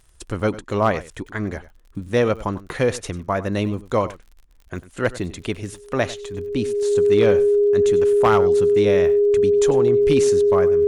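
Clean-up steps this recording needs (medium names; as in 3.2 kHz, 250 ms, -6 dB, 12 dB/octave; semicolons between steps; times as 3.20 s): clip repair -8.5 dBFS; de-click; band-stop 410 Hz, Q 30; inverse comb 97 ms -17 dB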